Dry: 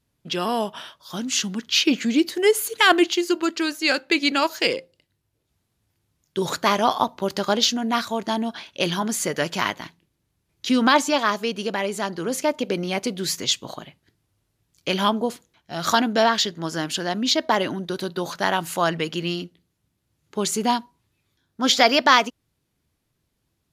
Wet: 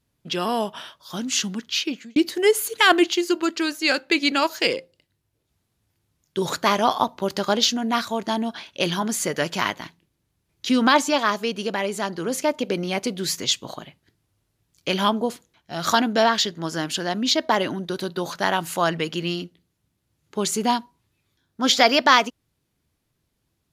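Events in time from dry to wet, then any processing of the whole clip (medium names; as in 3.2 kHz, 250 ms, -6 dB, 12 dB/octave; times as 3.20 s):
1.48–2.16 s: fade out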